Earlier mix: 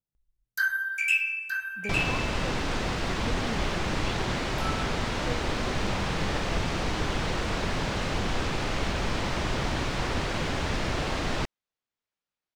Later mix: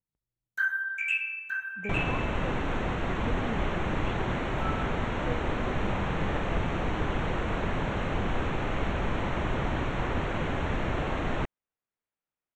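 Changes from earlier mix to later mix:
first sound: add high-pass 120 Hz; master: add boxcar filter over 9 samples

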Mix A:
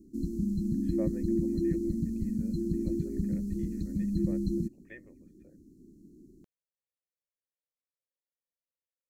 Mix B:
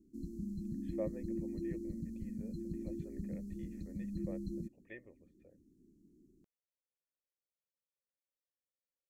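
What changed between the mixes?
speech: add peaking EQ 1.5 kHz -9.5 dB 0.43 oct; background -11.0 dB

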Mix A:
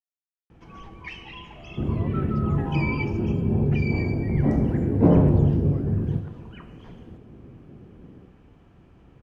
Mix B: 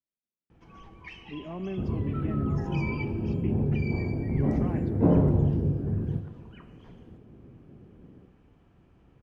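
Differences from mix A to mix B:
speech: entry -0.50 s; first sound -6.5 dB; second sound -4.5 dB

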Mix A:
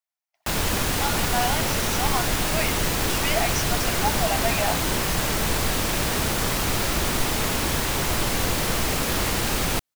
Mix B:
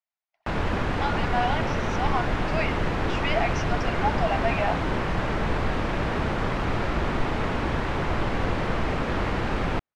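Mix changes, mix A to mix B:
speech: add low-pass 3.2 kHz; background: add low-pass 1.9 kHz 12 dB/octave

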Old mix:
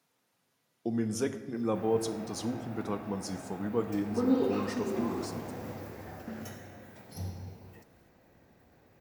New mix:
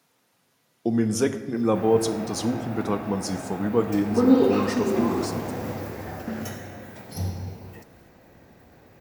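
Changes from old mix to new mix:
speech +8.5 dB; background +9.5 dB

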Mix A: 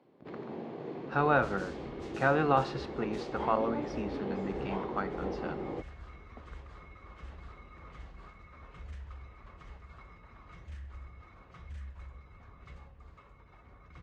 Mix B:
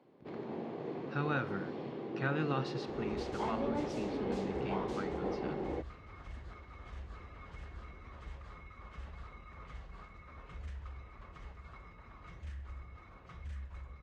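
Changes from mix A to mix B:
speech: add peaking EQ 730 Hz -15 dB 2 oct; second sound: entry +1.75 s

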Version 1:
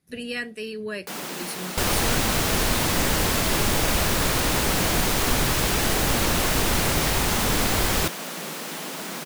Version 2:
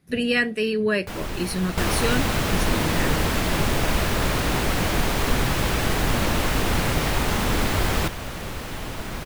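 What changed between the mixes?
speech +9.5 dB; first sound: remove steep high-pass 150 Hz 96 dB/octave; master: add tone controls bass +2 dB, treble -7 dB

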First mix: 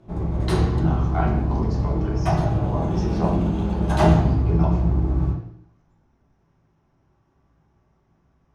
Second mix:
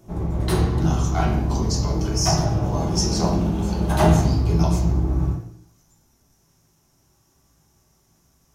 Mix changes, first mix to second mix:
speech: remove low-pass 2 kHz 12 dB/octave; master: remove distance through air 53 m

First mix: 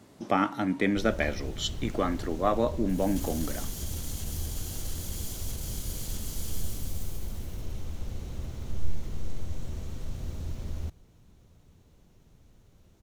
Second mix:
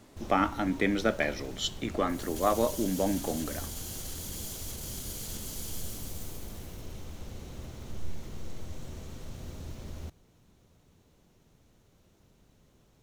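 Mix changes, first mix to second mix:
background: entry -0.80 s; master: add bass shelf 120 Hz -9.5 dB

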